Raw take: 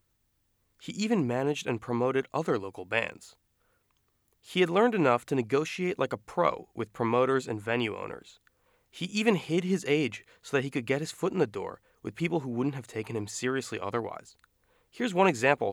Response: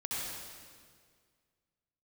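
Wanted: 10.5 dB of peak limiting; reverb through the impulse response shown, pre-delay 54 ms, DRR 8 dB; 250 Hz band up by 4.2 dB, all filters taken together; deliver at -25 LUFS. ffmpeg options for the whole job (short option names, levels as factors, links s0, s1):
-filter_complex "[0:a]equalizer=f=250:t=o:g=5.5,alimiter=limit=0.119:level=0:latency=1,asplit=2[s0][s1];[1:a]atrim=start_sample=2205,adelay=54[s2];[s1][s2]afir=irnorm=-1:irlink=0,volume=0.251[s3];[s0][s3]amix=inputs=2:normalize=0,volume=1.78"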